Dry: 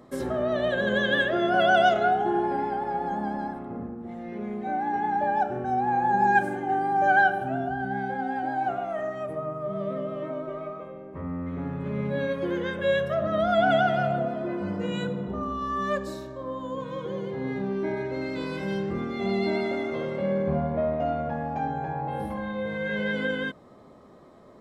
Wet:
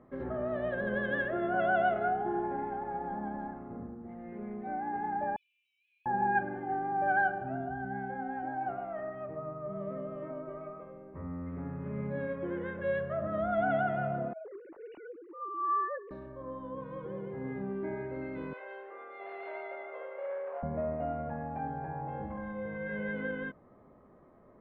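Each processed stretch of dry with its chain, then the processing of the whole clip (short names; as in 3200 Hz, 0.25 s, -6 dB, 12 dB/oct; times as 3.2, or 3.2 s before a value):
5.36–6.06 steep high-pass 2500 Hz 96 dB/oct + fast leveller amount 50%
14.33–16.11 sine-wave speech + bell 270 Hz +3.5 dB 2.1 oct
18.53–20.63 hard clip -21 dBFS + steep high-pass 470 Hz
whole clip: LPF 2200 Hz 24 dB/oct; low shelf 65 Hz +8.5 dB; gain -8 dB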